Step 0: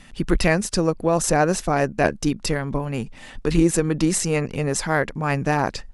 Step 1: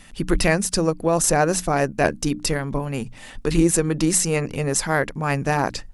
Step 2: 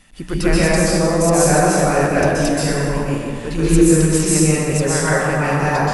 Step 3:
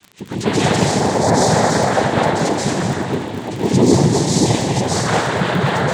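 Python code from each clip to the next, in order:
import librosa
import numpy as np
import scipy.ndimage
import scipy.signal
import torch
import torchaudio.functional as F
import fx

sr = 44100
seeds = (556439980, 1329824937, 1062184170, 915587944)

y1 = fx.high_shelf(x, sr, hz=10000.0, db=12.0)
y1 = fx.hum_notches(y1, sr, base_hz=60, count=5)
y2 = fx.rev_plate(y1, sr, seeds[0], rt60_s=2.3, hf_ratio=0.6, predelay_ms=115, drr_db=-9.5)
y2 = F.gain(torch.from_numpy(y2), -5.0).numpy()
y3 = fx.noise_vocoder(y2, sr, seeds[1], bands=6)
y3 = fx.dmg_crackle(y3, sr, seeds[2], per_s=33.0, level_db=-25.0)
y3 = y3 + 10.0 ** (-9.0 / 20.0) * np.pad(y3, (int(231 * sr / 1000.0), 0))[:len(y3)]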